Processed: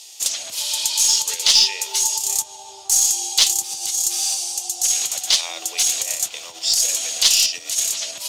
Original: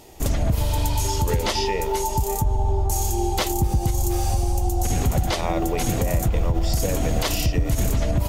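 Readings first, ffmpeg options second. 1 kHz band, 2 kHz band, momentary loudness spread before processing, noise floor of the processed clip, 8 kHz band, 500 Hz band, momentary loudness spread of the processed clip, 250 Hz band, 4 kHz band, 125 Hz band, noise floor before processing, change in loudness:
-9.5 dB, +3.0 dB, 1 LU, -40 dBFS, +14.5 dB, -15.5 dB, 9 LU, under -20 dB, +14.0 dB, under -35 dB, -26 dBFS, +6.0 dB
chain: -af "equalizer=f=1900:t=o:w=0.79:g=7.5,aexciter=amount=10.9:drive=7:freq=2900,highpass=750,lowpass=7400,aeval=exprs='2.11*(cos(1*acos(clip(val(0)/2.11,-1,1)))-cos(1*PI/2))+0.0531*(cos(6*acos(clip(val(0)/2.11,-1,1)))-cos(6*PI/2))+0.0473*(cos(7*acos(clip(val(0)/2.11,-1,1)))-cos(7*PI/2))+0.0211*(cos(8*acos(clip(val(0)/2.11,-1,1)))-cos(8*PI/2))':c=same,volume=0.447"

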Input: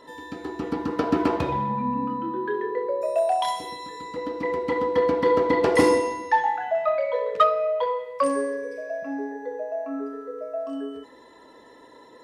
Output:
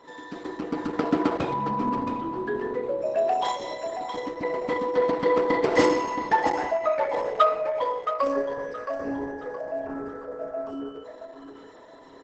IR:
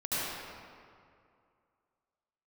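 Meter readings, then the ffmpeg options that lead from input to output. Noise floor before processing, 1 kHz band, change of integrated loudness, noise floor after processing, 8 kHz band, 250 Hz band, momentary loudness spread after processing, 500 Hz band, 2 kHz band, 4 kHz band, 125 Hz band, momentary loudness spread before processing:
-50 dBFS, -1.0 dB, -1.5 dB, -47 dBFS, -3.5 dB, -1.5 dB, 14 LU, -1.5 dB, -1.0 dB, -1.0 dB, -3.0 dB, 13 LU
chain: -af "highpass=140,aecho=1:1:671|1342|2013|2684:0.355|0.114|0.0363|0.0116,volume=0.891" -ar 48000 -c:a libopus -b:a 10k

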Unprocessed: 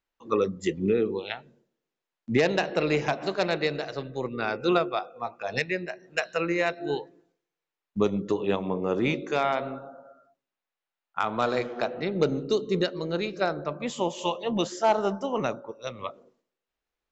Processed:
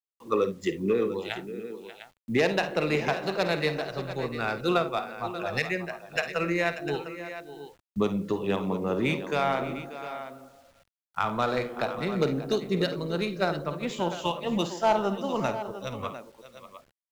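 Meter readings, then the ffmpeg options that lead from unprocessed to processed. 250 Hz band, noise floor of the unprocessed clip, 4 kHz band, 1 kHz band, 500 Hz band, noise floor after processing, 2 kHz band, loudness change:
-0.5 dB, under -85 dBFS, 0.0 dB, 0.0 dB, -1.0 dB, under -85 dBFS, +0.5 dB, -1.0 dB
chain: -filter_complex "[0:a]acrossover=split=170[s0][s1];[s0]acompressor=threshold=0.00398:ratio=6[s2];[s1]aecho=1:1:52|70|587|701:0.266|0.133|0.211|0.251[s3];[s2][s3]amix=inputs=2:normalize=0,adynamicsmooth=sensitivity=7.5:basefreq=5400,acrusher=bits=9:mix=0:aa=0.000001,asubboost=boost=3.5:cutoff=160"

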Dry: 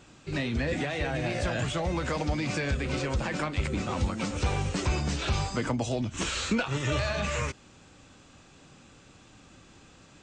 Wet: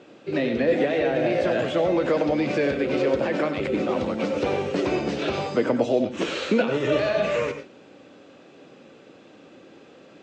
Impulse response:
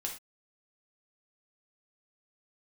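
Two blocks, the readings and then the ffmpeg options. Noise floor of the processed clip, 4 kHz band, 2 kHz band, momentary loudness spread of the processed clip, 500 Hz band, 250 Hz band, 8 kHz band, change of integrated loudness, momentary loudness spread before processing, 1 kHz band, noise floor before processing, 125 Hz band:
-50 dBFS, +0.5 dB, +3.0 dB, 4 LU, +12.0 dB, +7.0 dB, -8.0 dB, +6.0 dB, 2 LU, +4.0 dB, -55 dBFS, -4.5 dB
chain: -filter_complex "[0:a]highpass=340,lowpass=3500,lowshelf=f=700:t=q:w=1.5:g=8,asplit=2[s0][s1];[1:a]atrim=start_sample=2205,asetrate=79380,aresample=44100,adelay=92[s2];[s1][s2]afir=irnorm=-1:irlink=0,volume=0.668[s3];[s0][s3]amix=inputs=2:normalize=0,volume=1.5"

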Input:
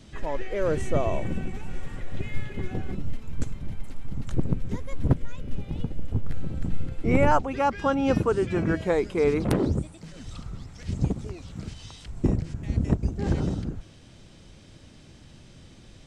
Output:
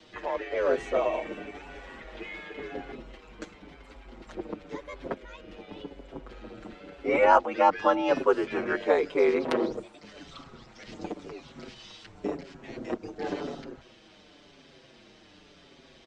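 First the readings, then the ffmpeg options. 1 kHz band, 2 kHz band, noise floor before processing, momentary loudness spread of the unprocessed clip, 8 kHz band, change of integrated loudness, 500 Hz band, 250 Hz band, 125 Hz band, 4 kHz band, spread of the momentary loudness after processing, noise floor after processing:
+2.5 dB, +2.0 dB, -50 dBFS, 16 LU, no reading, 0.0 dB, +1.0 dB, -6.5 dB, -22.0 dB, +0.5 dB, 22 LU, -56 dBFS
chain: -filter_complex "[0:a]aeval=exprs='val(0)*sin(2*PI*48*n/s)':c=same,acrossover=split=250[s0][s1];[s0]acompressor=threshold=0.0158:ratio=6[s2];[s2][s1]amix=inputs=2:normalize=0,acrossover=split=280 5500:gain=0.112 1 0.0708[s3][s4][s5];[s3][s4][s5]amix=inputs=3:normalize=0,asplit=2[s6][s7];[s7]adelay=5.9,afreqshift=-0.93[s8];[s6][s8]amix=inputs=2:normalize=1,volume=2.51"

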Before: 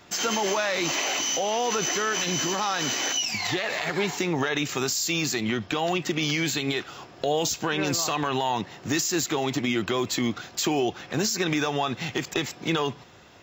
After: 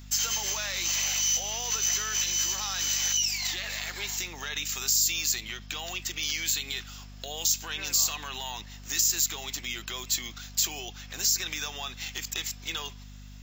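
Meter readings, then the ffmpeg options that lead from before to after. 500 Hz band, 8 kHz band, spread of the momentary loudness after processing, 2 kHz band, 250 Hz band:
-19.0 dB, +3.5 dB, 11 LU, -6.0 dB, -20.5 dB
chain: -af "aderivative,aeval=exprs='val(0)+0.00355*(sin(2*PI*50*n/s)+sin(2*PI*2*50*n/s)/2+sin(2*PI*3*50*n/s)/3+sin(2*PI*4*50*n/s)/4+sin(2*PI*5*50*n/s)/5)':c=same,volume=1.68"

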